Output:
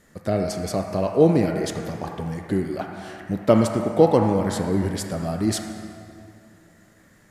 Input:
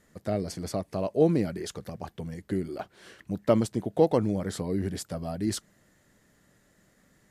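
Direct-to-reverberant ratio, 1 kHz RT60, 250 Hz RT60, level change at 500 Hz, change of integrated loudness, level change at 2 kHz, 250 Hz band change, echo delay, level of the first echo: 0.5 dB, 2.2 s, 2.9 s, +6.5 dB, +6.5 dB, +9.0 dB, +6.5 dB, none, none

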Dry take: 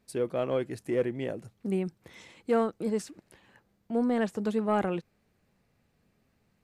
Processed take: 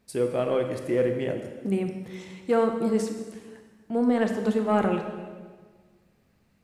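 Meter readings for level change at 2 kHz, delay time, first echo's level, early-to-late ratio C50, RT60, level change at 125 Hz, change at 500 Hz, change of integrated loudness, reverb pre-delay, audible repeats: +4.0 dB, none, none, 6.5 dB, 1.5 s, +4.5 dB, +4.5 dB, +4.0 dB, 21 ms, none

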